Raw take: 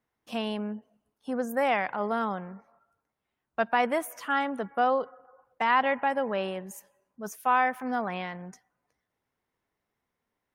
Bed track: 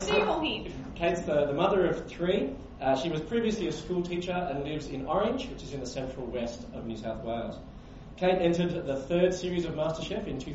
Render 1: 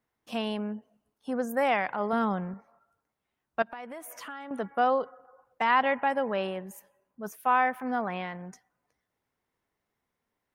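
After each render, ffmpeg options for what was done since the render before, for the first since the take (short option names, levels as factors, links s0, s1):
-filter_complex "[0:a]asettb=1/sr,asplit=3[s0][s1][s2];[s0]atrim=end=2.134[s3];[s1]atrim=start=2.13:end=2.54,asetpts=PTS-STARTPTS,afade=t=in:d=0.004:c=qsin,afade=t=out:st=0.406:d=0.004:c=qsin,lowshelf=f=220:g=10.5[s4];[s2]atrim=start=2.536[s5];[s3][s4]acrossfade=d=0.004:c1=hsin:c2=qsin[s6];[s6][s5]acrossfade=d=0.004:c1=qsin:c2=hsin,asettb=1/sr,asplit=3[s7][s8][s9];[s7]atrim=end=3.624[s10];[s8]atrim=start=3.62:end=4.51,asetpts=PTS-STARTPTS,afade=t=in:d=0.004:c=qsin,afade=t=out:st=0.886:d=0.004:c=qsin,acompressor=threshold=0.0126:ratio=6:attack=3.2:release=140:knee=1:detection=peak[s11];[s9]atrim=start=4.506[s12];[s10][s11]acrossfade=d=0.004:c1=hsin:c2=qsin[s13];[s13][s12]acrossfade=d=0.004:c1=qsin:c2=hsin,asettb=1/sr,asplit=3[s14][s15][s16];[s14]atrim=end=6.474[s17];[s15]atrim=start=6.47:end=8.45,asetpts=PTS-STARTPTS,afade=t=in:d=0.004:c=qsin,afade=t=out:st=1.976:d=0.004:c=qsin,equalizer=f=6400:t=o:w=1.3:g=-7[s18];[s16]atrim=start=8.446[s19];[s17][s18]acrossfade=d=0.004:c1=hsin:c2=qsin[s20];[s20][s19]acrossfade=d=0.004:c1=qsin:c2=hsin"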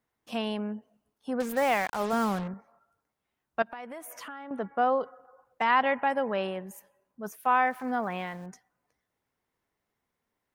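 -filter_complex "[0:a]asettb=1/sr,asplit=3[s0][s1][s2];[s0]atrim=end=1.404[s3];[s1]atrim=start=1.4:end=2.48,asetpts=PTS-STARTPTS,afade=t=in:d=0.004:c=qsin,afade=t=out:st=1.076:d=0.004:c=qsin,acrusher=bits=5:mix=0:aa=0.5[s4];[s2]atrim=start=2.476[s5];[s3][s4]acrossfade=d=0.004:c1=hsin:c2=qsin[s6];[s6][s5]acrossfade=d=0.004:c1=qsin:c2=hsin,asettb=1/sr,asplit=3[s7][s8][s9];[s7]atrim=end=4.284[s10];[s8]atrim=start=4.28:end=5.01,asetpts=PTS-STARTPTS,afade=t=in:d=0.004:c=qsin,afade=t=out:st=0.726:d=0.004:c=qsin,lowpass=f=2100:p=1[s11];[s9]atrim=start=5.006[s12];[s10][s11]acrossfade=d=0.004:c1=hsin:c2=qsin[s13];[s13][s12]acrossfade=d=0.004:c1=qsin:c2=hsin,asettb=1/sr,asplit=3[s14][s15][s16];[s14]atrim=end=7.454[s17];[s15]atrim=start=7.45:end=8.46,asetpts=PTS-STARTPTS,afade=t=in:d=0.004:c=qsin,afade=t=out:st=1.006:d=0.004:c=qsin,aeval=exprs='val(0)*gte(abs(val(0)),0.00251)':c=same[s18];[s16]atrim=start=8.456[s19];[s17][s18]acrossfade=d=0.004:c1=hsin:c2=qsin[s20];[s20][s19]acrossfade=d=0.004:c1=qsin:c2=hsin"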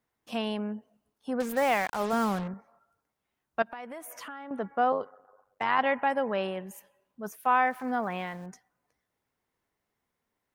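-filter_complex "[0:a]asettb=1/sr,asplit=3[s0][s1][s2];[s0]atrim=end=4.924[s3];[s1]atrim=start=4.92:end=5.79,asetpts=PTS-STARTPTS,afade=t=in:d=0.004:c=qsin,afade=t=out:st=0.866:d=0.004:c=qsin,tremolo=f=97:d=0.75[s4];[s2]atrim=start=5.786[s5];[s3][s4]acrossfade=d=0.004:c1=hsin:c2=qsin[s6];[s6][s5]acrossfade=d=0.004:c1=qsin:c2=hsin,asettb=1/sr,asplit=3[s7][s8][s9];[s7]atrim=end=6.574[s10];[s8]atrim=start=6.57:end=7.22,asetpts=PTS-STARTPTS,afade=t=in:d=0.004:c=qsin,afade=t=out:st=0.646:d=0.004:c=qsin,equalizer=f=3000:t=o:w=0.77:g=7[s11];[s9]atrim=start=7.216[s12];[s10][s11]acrossfade=d=0.004:c1=hsin:c2=qsin[s13];[s13][s12]acrossfade=d=0.004:c1=qsin:c2=hsin"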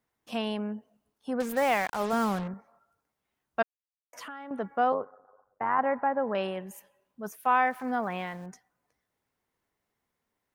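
-filter_complex "[0:a]asettb=1/sr,asplit=3[s0][s1][s2];[s0]atrim=end=4.944[s3];[s1]atrim=start=4.94:end=6.35,asetpts=PTS-STARTPTS,afade=t=in:d=0.004:c=qsin,afade=t=out:st=1.406:d=0.004:c=qsin,lowpass=f=1600:w=0.5412,lowpass=f=1600:w=1.3066[s4];[s2]atrim=start=6.346[s5];[s3][s4]acrossfade=d=0.004:c1=hsin:c2=qsin[s6];[s6][s5]acrossfade=d=0.004:c1=qsin:c2=hsin,asplit=3[s7][s8][s9];[s7]atrim=end=3.63,asetpts=PTS-STARTPTS,afade=t=out:st=3.626:d=0.004:c=hsin[s10];[s8]atrim=start=3.63:end=4.13,asetpts=PTS-STARTPTS,volume=0[s11];[s9]atrim=start=4.13,asetpts=PTS-STARTPTS,afade=t=in:d=0.004:c=hsin[s12];[s10][s11][s12]concat=n=3:v=0:a=1"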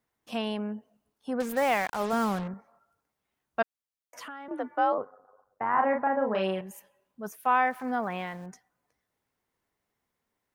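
-filter_complex "[0:a]asettb=1/sr,asplit=3[s0][s1][s2];[s0]atrim=end=4.484[s3];[s1]atrim=start=4.48:end=4.98,asetpts=PTS-STARTPTS,afade=t=in:d=0.004:c=qsin,afade=t=out:st=0.496:d=0.004:c=qsin,afreqshift=58[s4];[s2]atrim=start=4.976[s5];[s3][s4]acrossfade=d=0.004:c1=hsin:c2=qsin[s6];[s6][s5]acrossfade=d=0.004:c1=qsin:c2=hsin,asettb=1/sr,asplit=3[s7][s8][s9];[s7]atrim=end=5.704[s10];[s8]atrim=start=5.7:end=6.61,asetpts=PTS-STARTPTS,afade=t=in:d=0.004:c=qsin,afade=t=out:st=0.906:d=0.004:c=qsin,asplit=2[s11][s12];[s12]adelay=37,volume=0.708[s13];[s11][s13]amix=inputs=2:normalize=0,atrim=end_sample=40131[s14];[s9]atrim=start=6.606[s15];[s10][s14]acrossfade=d=0.004:c1=hsin:c2=qsin[s16];[s16][s15]acrossfade=d=0.004:c1=qsin:c2=hsin"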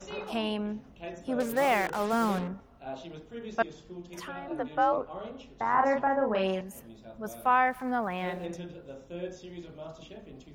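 -filter_complex "[1:a]volume=0.224[s0];[0:a][s0]amix=inputs=2:normalize=0"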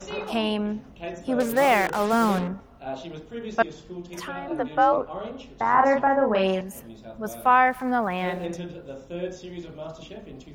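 -af "volume=2"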